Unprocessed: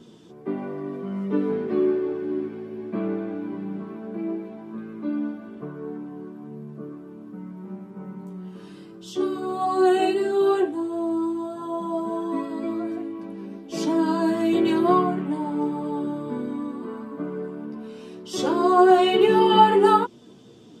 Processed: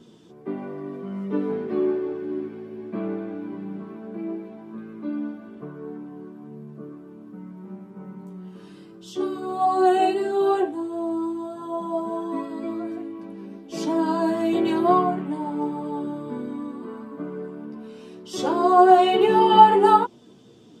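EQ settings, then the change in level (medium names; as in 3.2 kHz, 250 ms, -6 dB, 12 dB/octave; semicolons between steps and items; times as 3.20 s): dynamic bell 780 Hz, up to +7 dB, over -35 dBFS, Q 2; -2.0 dB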